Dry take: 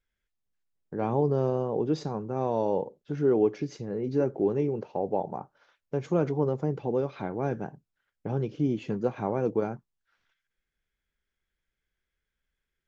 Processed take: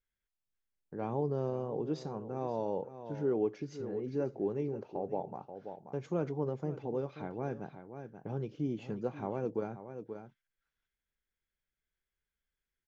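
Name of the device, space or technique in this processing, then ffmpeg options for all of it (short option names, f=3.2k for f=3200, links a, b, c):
ducked delay: -filter_complex "[0:a]asplit=3[a][b][c];[b]adelay=532,volume=-8.5dB[d];[c]apad=whole_len=591105[e];[d][e]sidechaincompress=threshold=-30dB:ratio=8:attack=28:release=470[f];[a][f]amix=inputs=2:normalize=0,volume=-8dB"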